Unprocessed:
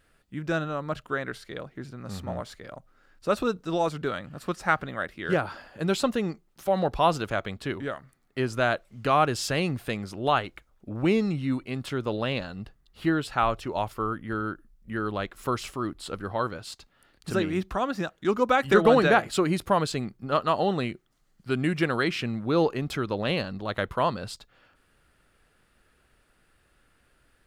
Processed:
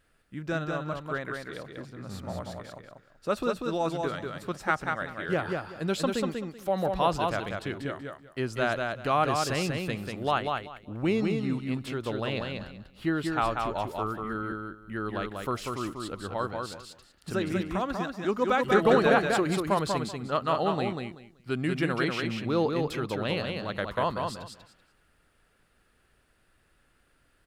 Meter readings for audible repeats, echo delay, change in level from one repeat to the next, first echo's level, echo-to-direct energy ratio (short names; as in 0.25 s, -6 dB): 3, 0.191 s, -14.0 dB, -4.0 dB, -4.0 dB